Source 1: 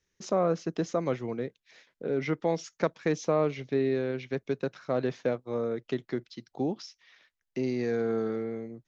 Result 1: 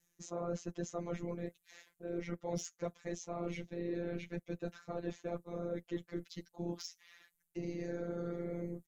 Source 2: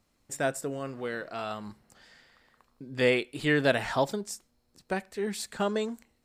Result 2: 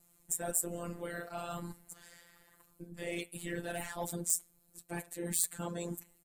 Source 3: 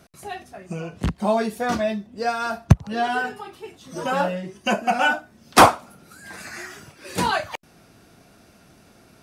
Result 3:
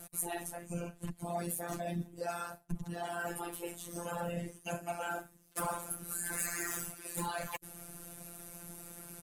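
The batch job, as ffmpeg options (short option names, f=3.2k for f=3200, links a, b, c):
-af "equalizer=f=74:w=0.81:g=7,areverse,acompressor=threshold=-34dB:ratio=6,areverse,afftfilt=real='hypot(re,im)*cos(2*PI*random(0))':imag='hypot(re,im)*sin(2*PI*random(1))':win_size=512:overlap=0.75,aresample=32000,aresample=44100,afftfilt=real='hypot(re,im)*cos(PI*b)':imag='0':win_size=1024:overlap=0.75,asoftclip=type=tanh:threshold=-31dB,aexciter=amount=8.9:drive=3.1:freq=7.3k,volume=7.5dB"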